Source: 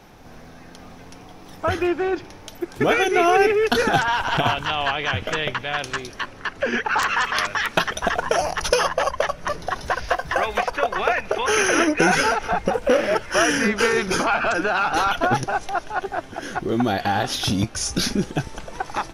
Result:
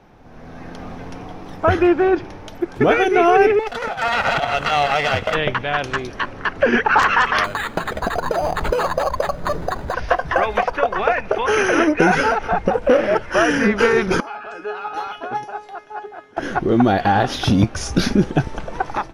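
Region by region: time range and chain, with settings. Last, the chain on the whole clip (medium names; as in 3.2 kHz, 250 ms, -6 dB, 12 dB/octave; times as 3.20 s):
3.59–5.35 s: comb filter that takes the minimum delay 1.5 ms + bass shelf 180 Hz -11.5 dB + compressor with a negative ratio -25 dBFS, ratio -0.5
7.44–9.94 s: low-pass 1.8 kHz 6 dB/octave + compression, threshold -23 dBFS + careless resampling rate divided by 8×, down none, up hold
14.20–16.37 s: high-pass 290 Hz 6 dB/octave + feedback comb 420 Hz, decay 0.34 s, mix 90%
whole clip: treble shelf 3.1 kHz -12 dB; level rider; treble shelf 9.1 kHz -5.5 dB; trim -1.5 dB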